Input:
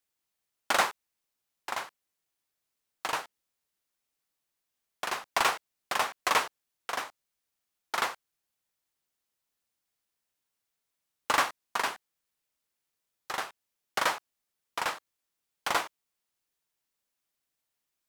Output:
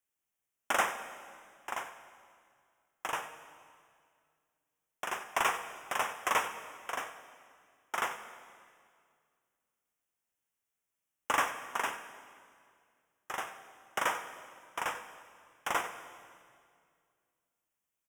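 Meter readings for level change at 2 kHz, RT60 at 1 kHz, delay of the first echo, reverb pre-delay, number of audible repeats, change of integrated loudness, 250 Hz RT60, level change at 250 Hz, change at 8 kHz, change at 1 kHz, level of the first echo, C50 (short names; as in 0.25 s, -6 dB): -3.0 dB, 2.0 s, 93 ms, 14 ms, 1, -4.0 dB, 2.6 s, -3.0 dB, -3.5 dB, -3.0 dB, -14.5 dB, 9.0 dB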